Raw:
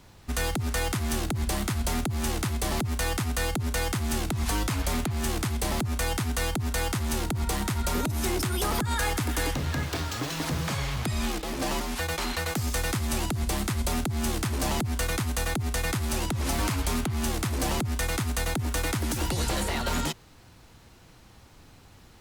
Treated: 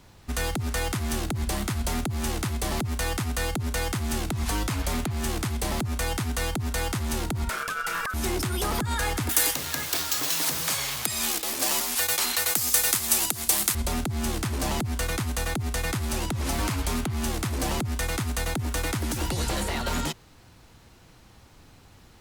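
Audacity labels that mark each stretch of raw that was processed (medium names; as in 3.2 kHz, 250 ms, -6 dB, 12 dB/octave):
7.490000	8.140000	ring modulator 1.4 kHz
9.290000	13.750000	RIAA curve recording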